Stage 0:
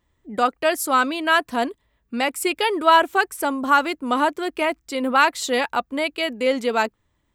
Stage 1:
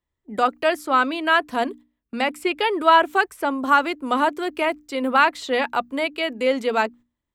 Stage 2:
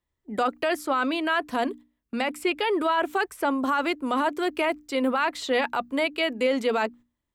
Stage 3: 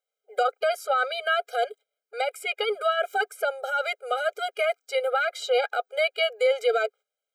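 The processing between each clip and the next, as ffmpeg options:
ffmpeg -i in.wav -filter_complex "[0:a]agate=range=-14dB:threshold=-41dB:ratio=16:detection=peak,bandreject=frequency=60:width_type=h:width=6,bandreject=frequency=120:width_type=h:width=6,bandreject=frequency=180:width_type=h:width=6,bandreject=frequency=240:width_type=h:width=6,bandreject=frequency=300:width_type=h:width=6,acrossover=split=290|1400|4000[link_01][link_02][link_03][link_04];[link_04]acompressor=threshold=-44dB:ratio=6[link_05];[link_01][link_02][link_03][link_05]amix=inputs=4:normalize=0" out.wav
ffmpeg -i in.wav -af "alimiter=limit=-15dB:level=0:latency=1:release=25" out.wav
ffmpeg -i in.wav -af "afftfilt=real='re*eq(mod(floor(b*sr/1024/410),2),1)':imag='im*eq(mod(floor(b*sr/1024/410),2),1)':win_size=1024:overlap=0.75,volume=2.5dB" out.wav

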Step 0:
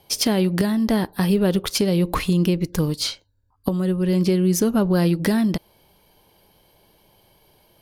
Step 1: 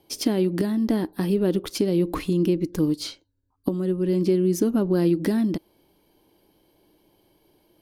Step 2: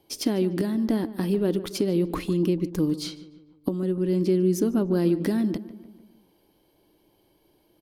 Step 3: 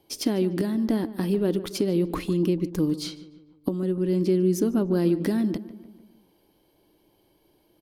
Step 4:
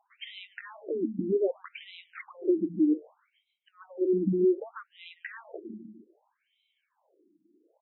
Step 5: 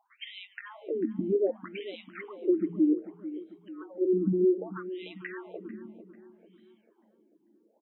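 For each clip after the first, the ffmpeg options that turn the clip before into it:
ffmpeg -i in.wav -af "equalizer=frequency=310:width=1.9:gain=14.5,volume=-8.5dB" out.wav
ffmpeg -i in.wav -filter_complex "[0:a]asplit=2[link_01][link_02];[link_02]adelay=148,lowpass=frequency=2200:poles=1,volume=-15dB,asplit=2[link_03][link_04];[link_04]adelay=148,lowpass=frequency=2200:poles=1,volume=0.54,asplit=2[link_05][link_06];[link_06]adelay=148,lowpass=frequency=2200:poles=1,volume=0.54,asplit=2[link_07][link_08];[link_08]adelay=148,lowpass=frequency=2200:poles=1,volume=0.54,asplit=2[link_09][link_10];[link_10]adelay=148,lowpass=frequency=2200:poles=1,volume=0.54[link_11];[link_01][link_03][link_05][link_07][link_09][link_11]amix=inputs=6:normalize=0,volume=-2dB" out.wav
ffmpeg -i in.wav -af anull out.wav
ffmpeg -i in.wav -af "afftfilt=real='re*between(b*sr/1024,240*pow(2900/240,0.5+0.5*sin(2*PI*0.64*pts/sr))/1.41,240*pow(2900/240,0.5+0.5*sin(2*PI*0.64*pts/sr))*1.41)':imag='im*between(b*sr/1024,240*pow(2900/240,0.5+0.5*sin(2*PI*0.64*pts/sr))/1.41,240*pow(2900/240,0.5+0.5*sin(2*PI*0.64*pts/sr))*1.41)':win_size=1024:overlap=0.75,volume=1.5dB" out.wav
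ffmpeg -i in.wav -filter_complex "[0:a]asplit=2[link_01][link_02];[link_02]adelay=444,lowpass=frequency=1500:poles=1,volume=-14dB,asplit=2[link_03][link_04];[link_04]adelay=444,lowpass=frequency=1500:poles=1,volume=0.54,asplit=2[link_05][link_06];[link_06]adelay=444,lowpass=frequency=1500:poles=1,volume=0.54,asplit=2[link_07][link_08];[link_08]adelay=444,lowpass=frequency=1500:poles=1,volume=0.54,asplit=2[link_09][link_10];[link_10]adelay=444,lowpass=frequency=1500:poles=1,volume=0.54[link_11];[link_01][link_03][link_05][link_07][link_09][link_11]amix=inputs=6:normalize=0" out.wav

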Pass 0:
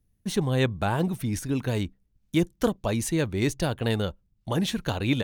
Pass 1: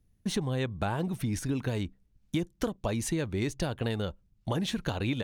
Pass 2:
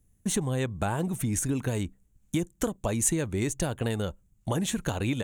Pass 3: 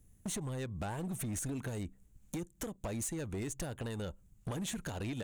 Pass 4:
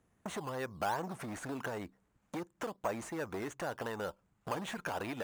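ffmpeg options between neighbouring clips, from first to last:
ffmpeg -i in.wav -af "highshelf=frequency=12000:gain=-9.5,acompressor=threshold=-29dB:ratio=6,volume=2dB" out.wav
ffmpeg -i in.wav -af "highshelf=frequency=6000:width_type=q:width=3:gain=6.5,volume=2dB" out.wav
ffmpeg -i in.wav -af "acompressor=threshold=-35dB:ratio=16,asoftclip=type=hard:threshold=-36.5dB,volume=2.5dB" out.wav
ffmpeg -i in.wav -filter_complex "[0:a]bandpass=frequency=1100:width_type=q:width=1.1:csg=0,asplit=2[link_01][link_02];[link_02]acrusher=samples=9:mix=1:aa=0.000001:lfo=1:lforange=5.4:lforate=2.7,volume=-4.5dB[link_03];[link_01][link_03]amix=inputs=2:normalize=0,volume=7dB" out.wav

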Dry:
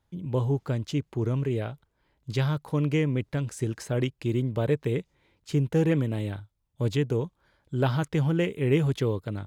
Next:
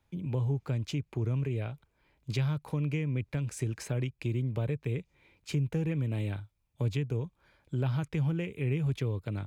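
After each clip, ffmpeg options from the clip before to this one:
ffmpeg -i in.wav -filter_complex "[0:a]equalizer=frequency=2400:width_type=o:width=0.23:gain=10,acrossover=split=140[link_01][link_02];[link_02]acompressor=threshold=-35dB:ratio=5[link_03];[link_01][link_03]amix=inputs=2:normalize=0" out.wav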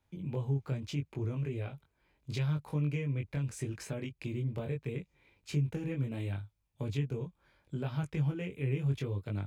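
ffmpeg -i in.wav -af "flanger=delay=20:depth=2.2:speed=0.75" out.wav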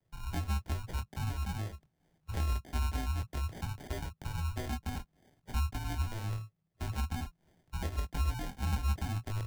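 ffmpeg -i in.wav -af "acrusher=samples=31:mix=1:aa=0.000001,equalizer=frequency=1000:width=5.6:gain=2,afreqshift=-210" out.wav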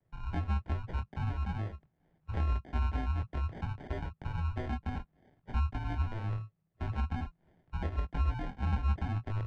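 ffmpeg -i in.wav -af "lowpass=2200,volume=1.5dB" out.wav

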